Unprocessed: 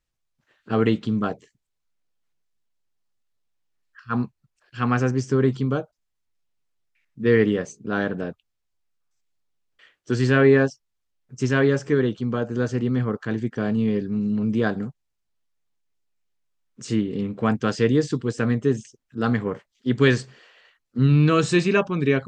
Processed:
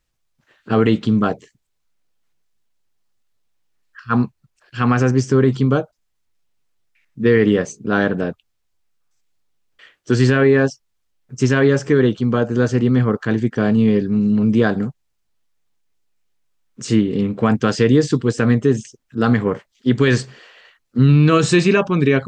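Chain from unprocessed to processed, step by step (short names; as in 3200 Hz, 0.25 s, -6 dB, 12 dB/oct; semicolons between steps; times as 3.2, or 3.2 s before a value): limiter -12 dBFS, peak gain reduction 7.5 dB; gain +7.5 dB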